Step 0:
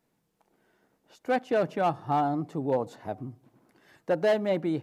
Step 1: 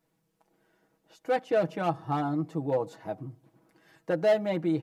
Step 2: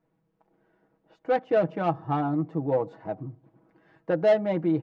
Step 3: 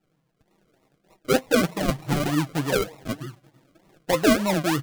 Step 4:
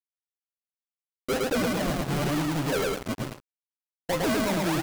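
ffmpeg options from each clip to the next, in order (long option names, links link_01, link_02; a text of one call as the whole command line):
ffmpeg -i in.wav -af "aecho=1:1:6.2:0.65,volume=-2.5dB" out.wav
ffmpeg -i in.wav -af "adynamicsmooth=sensitivity=1:basefreq=2000,volume=3dB" out.wav
ffmpeg -i in.wav -af "acrusher=samples=39:mix=1:aa=0.000001:lfo=1:lforange=23.4:lforate=3.3,flanger=delay=5.1:depth=2.6:regen=47:speed=1.8:shape=sinusoidal,volume=6.5dB" out.wav
ffmpeg -i in.wav -af "aecho=1:1:108|216|324|432:0.631|0.196|0.0606|0.0188,acrusher=bits=4:mix=0:aa=0.5,asoftclip=type=tanh:threshold=-24.5dB,volume=1.5dB" out.wav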